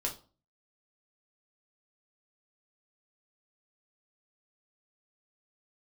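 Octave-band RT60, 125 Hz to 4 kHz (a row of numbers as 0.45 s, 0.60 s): 0.55 s, 0.45 s, 0.40 s, 0.40 s, 0.25 s, 0.30 s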